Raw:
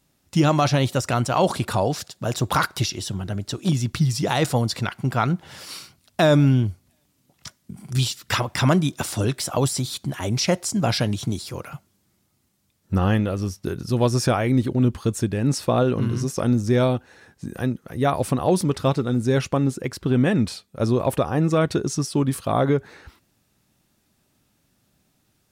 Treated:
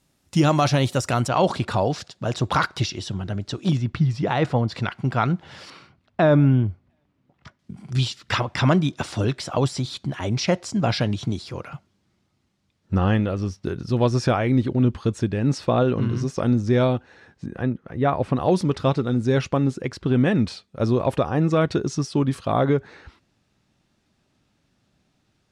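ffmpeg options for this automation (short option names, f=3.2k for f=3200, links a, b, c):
-af "asetnsamples=n=441:p=0,asendcmd='1.28 lowpass f 5100;3.77 lowpass f 2500;4.72 lowpass f 4600;5.7 lowpass f 2000;7.59 lowpass f 4600;17.46 lowpass f 2500;18.36 lowpass f 5300',lowpass=12k"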